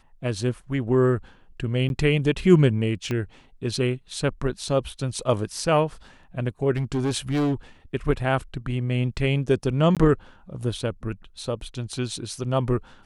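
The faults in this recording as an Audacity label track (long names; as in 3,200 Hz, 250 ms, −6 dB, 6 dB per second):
1.890000	1.900000	drop-out 11 ms
3.110000	3.110000	click −15 dBFS
6.760000	7.540000	clipping −20 dBFS
9.950000	9.970000	drop-out 17 ms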